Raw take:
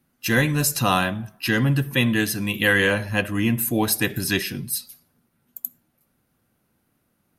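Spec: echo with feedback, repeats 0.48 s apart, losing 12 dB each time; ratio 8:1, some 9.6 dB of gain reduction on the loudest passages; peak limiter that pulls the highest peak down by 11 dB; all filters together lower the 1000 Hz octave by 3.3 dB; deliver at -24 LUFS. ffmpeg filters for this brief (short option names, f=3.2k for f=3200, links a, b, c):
-af "equalizer=f=1k:t=o:g=-4.5,acompressor=threshold=-26dB:ratio=8,alimiter=limit=-21dB:level=0:latency=1,aecho=1:1:480|960|1440:0.251|0.0628|0.0157,volume=7.5dB"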